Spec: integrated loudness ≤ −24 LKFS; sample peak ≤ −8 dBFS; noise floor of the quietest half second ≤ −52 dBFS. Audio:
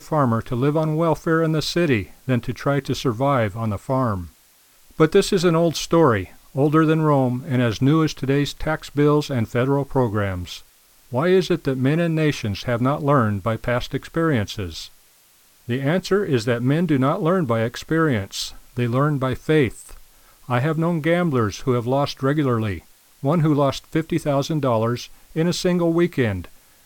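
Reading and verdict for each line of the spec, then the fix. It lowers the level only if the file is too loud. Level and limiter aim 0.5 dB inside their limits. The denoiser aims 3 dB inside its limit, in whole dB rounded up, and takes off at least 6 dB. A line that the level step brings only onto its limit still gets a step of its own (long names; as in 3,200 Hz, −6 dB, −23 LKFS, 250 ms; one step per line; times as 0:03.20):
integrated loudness −21.0 LKFS: out of spec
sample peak −4.5 dBFS: out of spec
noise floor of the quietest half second −55 dBFS: in spec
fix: level −3.5 dB
brickwall limiter −8.5 dBFS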